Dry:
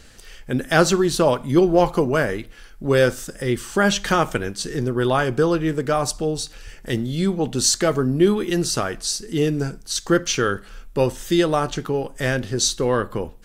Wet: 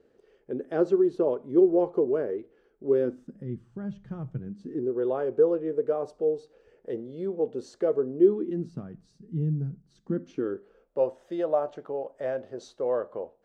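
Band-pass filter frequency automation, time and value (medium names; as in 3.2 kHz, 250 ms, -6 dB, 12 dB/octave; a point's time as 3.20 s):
band-pass filter, Q 4
2.85 s 410 Hz
3.78 s 120 Hz
4.30 s 120 Hz
4.97 s 460 Hz
8.14 s 460 Hz
8.86 s 160 Hz
9.85 s 160 Hz
11.00 s 600 Hz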